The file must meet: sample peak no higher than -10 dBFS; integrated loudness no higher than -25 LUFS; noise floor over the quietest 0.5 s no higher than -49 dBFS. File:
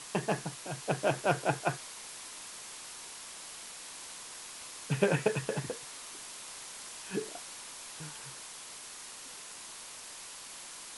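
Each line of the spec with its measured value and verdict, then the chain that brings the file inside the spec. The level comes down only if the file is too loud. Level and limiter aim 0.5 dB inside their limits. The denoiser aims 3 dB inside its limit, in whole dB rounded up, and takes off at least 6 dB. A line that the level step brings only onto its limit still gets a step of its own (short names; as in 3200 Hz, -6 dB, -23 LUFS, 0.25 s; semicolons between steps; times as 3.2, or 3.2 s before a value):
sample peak -11.0 dBFS: OK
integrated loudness -37.0 LUFS: OK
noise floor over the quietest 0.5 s -47 dBFS: fail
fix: denoiser 6 dB, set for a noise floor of -47 dBFS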